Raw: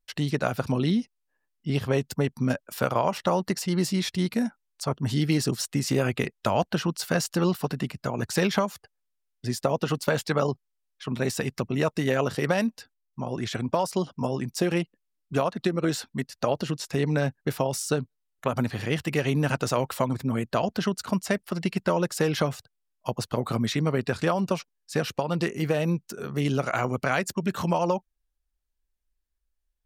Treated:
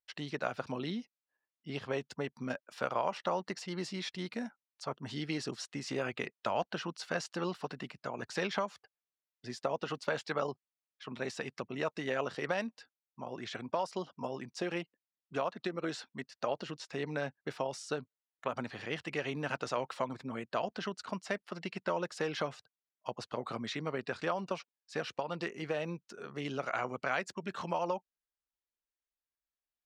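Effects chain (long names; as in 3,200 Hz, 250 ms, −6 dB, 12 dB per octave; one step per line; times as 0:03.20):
high-pass filter 560 Hz 6 dB per octave
high-frequency loss of the air 110 metres
level −5.5 dB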